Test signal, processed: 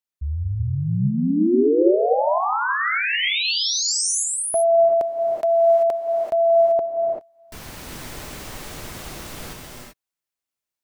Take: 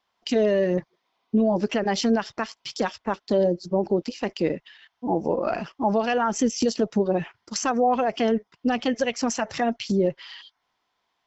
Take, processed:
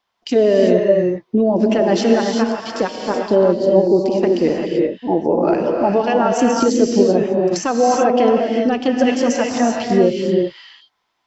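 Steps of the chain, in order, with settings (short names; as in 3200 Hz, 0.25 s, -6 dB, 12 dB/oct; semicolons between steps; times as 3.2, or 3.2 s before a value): dynamic EQ 390 Hz, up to +7 dB, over -34 dBFS, Q 0.89; non-linear reverb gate 0.41 s rising, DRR 0 dB; gain +1.5 dB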